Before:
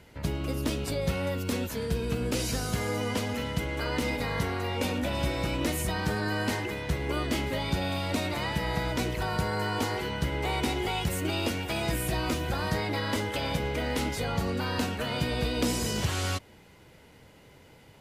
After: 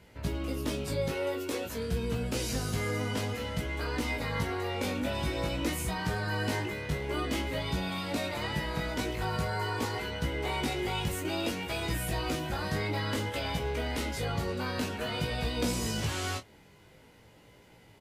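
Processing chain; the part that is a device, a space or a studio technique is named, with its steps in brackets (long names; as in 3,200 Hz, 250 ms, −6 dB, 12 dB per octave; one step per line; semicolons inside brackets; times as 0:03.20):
0:01.08–0:01.66: low shelf with overshoot 250 Hz −8 dB, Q 3
double-tracked vocal (double-tracking delay 27 ms −11 dB; chorus effect 0.51 Hz, delay 17 ms, depth 2.8 ms)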